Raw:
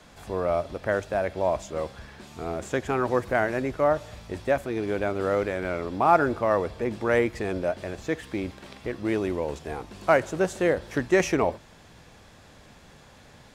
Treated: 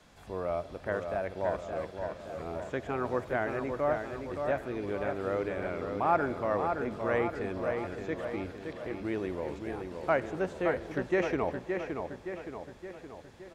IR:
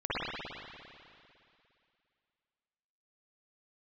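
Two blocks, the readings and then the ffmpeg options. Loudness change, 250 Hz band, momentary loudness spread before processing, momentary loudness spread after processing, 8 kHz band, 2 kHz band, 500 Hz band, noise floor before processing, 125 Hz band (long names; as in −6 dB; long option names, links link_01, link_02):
−6.5 dB, −6.0 dB, 12 LU, 10 LU, below −15 dB, −6.5 dB, −6.0 dB, −52 dBFS, −6.0 dB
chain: -filter_complex "[0:a]acrossover=split=3900[link_01][link_02];[link_02]acompressor=threshold=-55dB:ratio=4:attack=1:release=60[link_03];[link_01][link_03]amix=inputs=2:normalize=0,asplit=2[link_04][link_05];[link_05]adelay=569,lowpass=frequency=3900:poles=1,volume=-5.5dB,asplit=2[link_06][link_07];[link_07]adelay=569,lowpass=frequency=3900:poles=1,volume=0.55,asplit=2[link_08][link_09];[link_09]adelay=569,lowpass=frequency=3900:poles=1,volume=0.55,asplit=2[link_10][link_11];[link_11]adelay=569,lowpass=frequency=3900:poles=1,volume=0.55,asplit=2[link_12][link_13];[link_13]adelay=569,lowpass=frequency=3900:poles=1,volume=0.55,asplit=2[link_14][link_15];[link_15]adelay=569,lowpass=frequency=3900:poles=1,volume=0.55,asplit=2[link_16][link_17];[link_17]adelay=569,lowpass=frequency=3900:poles=1,volume=0.55[link_18];[link_04][link_06][link_08][link_10][link_12][link_14][link_16][link_18]amix=inputs=8:normalize=0,asplit=2[link_19][link_20];[1:a]atrim=start_sample=2205,adelay=36[link_21];[link_20][link_21]afir=irnorm=-1:irlink=0,volume=-30.5dB[link_22];[link_19][link_22]amix=inputs=2:normalize=0,volume=-7.5dB"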